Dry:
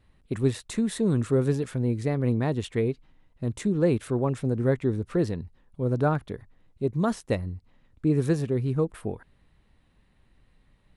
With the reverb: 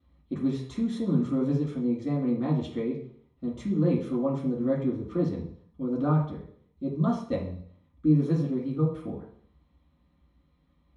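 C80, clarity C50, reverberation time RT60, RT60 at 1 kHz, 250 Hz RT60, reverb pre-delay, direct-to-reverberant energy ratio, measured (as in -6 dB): 9.5 dB, 6.0 dB, 0.60 s, 0.60 s, 0.60 s, 3 ms, -6.5 dB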